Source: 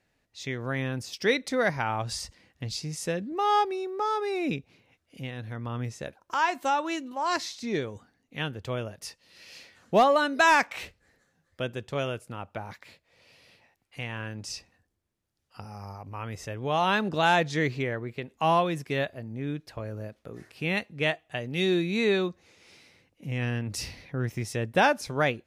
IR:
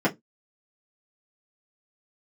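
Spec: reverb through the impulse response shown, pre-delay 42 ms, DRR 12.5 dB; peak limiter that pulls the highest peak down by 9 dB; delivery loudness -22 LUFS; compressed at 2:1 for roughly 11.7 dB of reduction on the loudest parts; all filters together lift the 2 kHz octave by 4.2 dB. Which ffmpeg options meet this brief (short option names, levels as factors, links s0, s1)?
-filter_complex "[0:a]equalizer=f=2000:t=o:g=5.5,acompressor=threshold=0.0158:ratio=2,alimiter=level_in=1.33:limit=0.0631:level=0:latency=1,volume=0.75,asplit=2[s0][s1];[1:a]atrim=start_sample=2205,adelay=42[s2];[s1][s2]afir=irnorm=-1:irlink=0,volume=0.0447[s3];[s0][s3]amix=inputs=2:normalize=0,volume=5.96"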